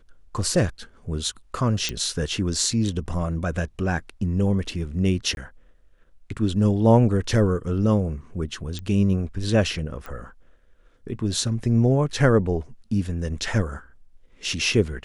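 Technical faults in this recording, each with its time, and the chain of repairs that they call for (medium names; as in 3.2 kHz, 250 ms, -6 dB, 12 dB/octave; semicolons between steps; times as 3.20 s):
1.89 s: pop -11 dBFS
5.35–5.37 s: dropout 21 ms
8.79 s: pop -20 dBFS
10.06 s: pop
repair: de-click; interpolate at 5.35 s, 21 ms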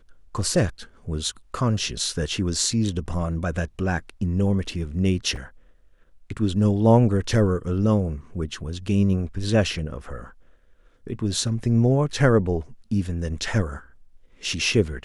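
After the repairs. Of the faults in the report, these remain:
8.79 s: pop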